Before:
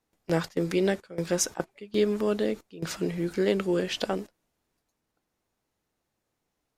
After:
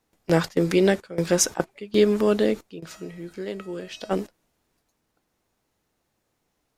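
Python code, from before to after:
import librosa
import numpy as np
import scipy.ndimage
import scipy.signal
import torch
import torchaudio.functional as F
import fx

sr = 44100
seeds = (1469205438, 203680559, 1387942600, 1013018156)

y = fx.comb_fb(x, sr, f0_hz=640.0, decay_s=0.52, harmonics='all', damping=0.0, mix_pct=80, at=(2.79, 4.1), fade=0.02)
y = y * librosa.db_to_amplitude(6.0)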